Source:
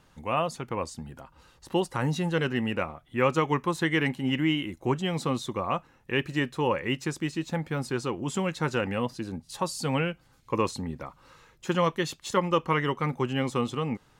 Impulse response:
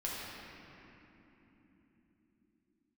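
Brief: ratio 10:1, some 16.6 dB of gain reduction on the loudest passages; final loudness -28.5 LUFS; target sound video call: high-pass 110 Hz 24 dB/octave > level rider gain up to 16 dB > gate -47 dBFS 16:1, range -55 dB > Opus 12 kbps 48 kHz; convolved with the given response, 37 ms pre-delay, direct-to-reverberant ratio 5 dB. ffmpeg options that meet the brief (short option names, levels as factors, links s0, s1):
-filter_complex "[0:a]acompressor=threshold=0.0141:ratio=10,asplit=2[s0][s1];[1:a]atrim=start_sample=2205,adelay=37[s2];[s1][s2]afir=irnorm=-1:irlink=0,volume=0.355[s3];[s0][s3]amix=inputs=2:normalize=0,highpass=f=110:w=0.5412,highpass=f=110:w=1.3066,dynaudnorm=m=6.31,agate=range=0.00178:threshold=0.00447:ratio=16,volume=4.47" -ar 48000 -c:a libopus -b:a 12k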